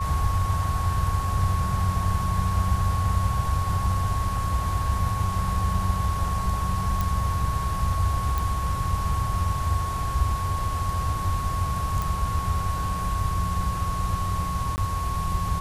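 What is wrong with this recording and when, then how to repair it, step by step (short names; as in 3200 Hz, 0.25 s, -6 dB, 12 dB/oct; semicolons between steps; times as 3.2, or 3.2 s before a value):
tone 1100 Hz -29 dBFS
7.01 pop
8.38 pop
12.02 pop
14.76–14.78 gap 19 ms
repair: de-click; notch 1100 Hz, Q 30; interpolate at 14.76, 19 ms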